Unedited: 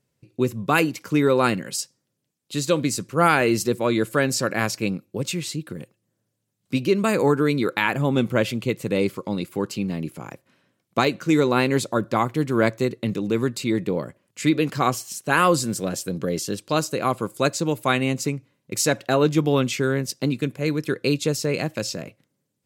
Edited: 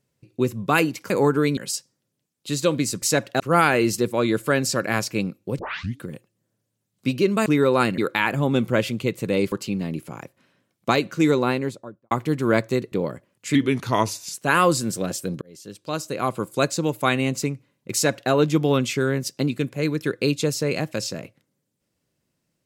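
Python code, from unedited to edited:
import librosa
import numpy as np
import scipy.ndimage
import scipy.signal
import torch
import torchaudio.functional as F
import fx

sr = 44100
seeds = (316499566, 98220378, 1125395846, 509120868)

y = fx.studio_fade_out(x, sr, start_s=11.34, length_s=0.86)
y = fx.edit(y, sr, fx.swap(start_s=1.1, length_s=0.52, other_s=7.13, other_length_s=0.47),
    fx.tape_start(start_s=5.26, length_s=0.43),
    fx.cut(start_s=9.14, length_s=0.47),
    fx.cut(start_s=13.01, length_s=0.84),
    fx.speed_span(start_s=14.48, length_s=0.69, speed=0.87),
    fx.fade_in_span(start_s=16.24, length_s=1.02),
    fx.duplicate(start_s=18.76, length_s=0.38, to_s=3.07), tone=tone)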